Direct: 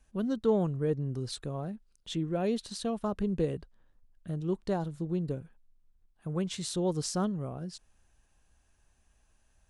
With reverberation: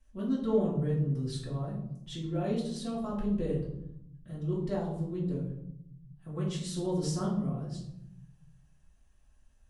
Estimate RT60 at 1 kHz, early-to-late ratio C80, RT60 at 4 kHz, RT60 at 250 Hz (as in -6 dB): 0.65 s, 8.0 dB, 0.45 s, 1.4 s